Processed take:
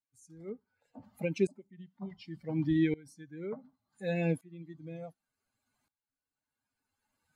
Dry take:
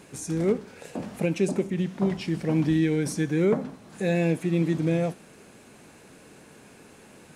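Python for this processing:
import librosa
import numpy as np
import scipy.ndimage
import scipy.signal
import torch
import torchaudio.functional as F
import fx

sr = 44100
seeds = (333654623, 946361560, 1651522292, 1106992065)

y = fx.bin_expand(x, sr, power=2.0)
y = fx.lowpass(y, sr, hz=2300.0, slope=6, at=(0.49, 1.04))
y = fx.tremolo_decay(y, sr, direction='swelling', hz=0.68, depth_db=23)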